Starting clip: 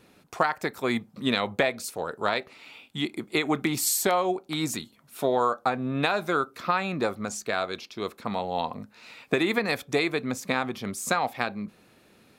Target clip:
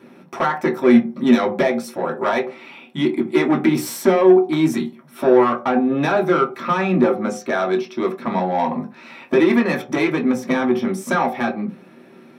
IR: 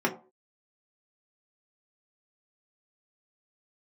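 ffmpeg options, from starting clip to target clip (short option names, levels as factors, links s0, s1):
-filter_complex "[0:a]asoftclip=type=tanh:threshold=0.0708[s0];[1:a]atrim=start_sample=2205[s1];[s0][s1]afir=irnorm=-1:irlink=0,volume=0.841"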